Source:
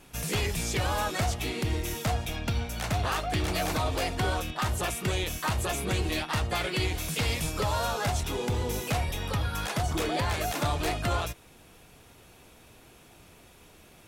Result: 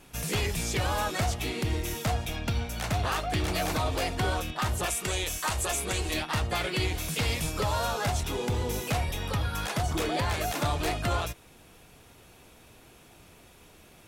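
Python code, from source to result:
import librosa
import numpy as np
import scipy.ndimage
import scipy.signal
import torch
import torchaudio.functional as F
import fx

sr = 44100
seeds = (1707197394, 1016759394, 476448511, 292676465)

y = fx.graphic_eq_10(x, sr, hz=(125, 250, 8000), db=(-8, -5, 7), at=(4.86, 6.14))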